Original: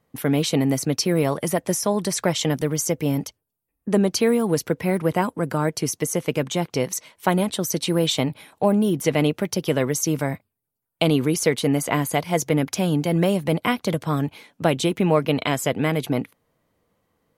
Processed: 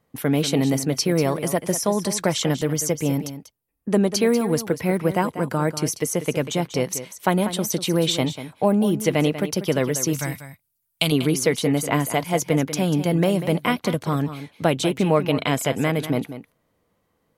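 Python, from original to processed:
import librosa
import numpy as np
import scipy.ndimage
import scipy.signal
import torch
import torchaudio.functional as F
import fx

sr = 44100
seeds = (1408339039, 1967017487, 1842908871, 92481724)

p1 = fx.curve_eq(x, sr, hz=(130.0, 390.0, 6100.0), db=(0, -11, 10), at=(10.13, 11.12))
y = p1 + fx.echo_single(p1, sr, ms=192, db=-12.0, dry=0)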